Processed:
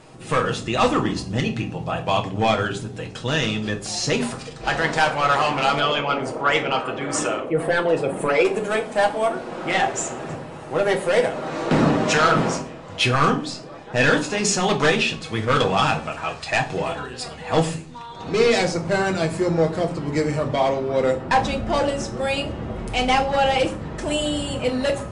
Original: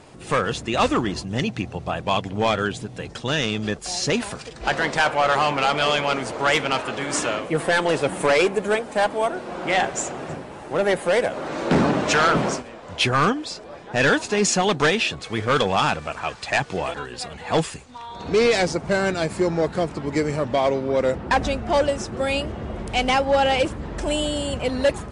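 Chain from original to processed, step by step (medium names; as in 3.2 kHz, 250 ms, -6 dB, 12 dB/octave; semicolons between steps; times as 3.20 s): 5.80–8.45 s: resonances exaggerated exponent 1.5; reverberation RT60 0.45 s, pre-delay 6 ms, DRR 2 dB; trim -1.5 dB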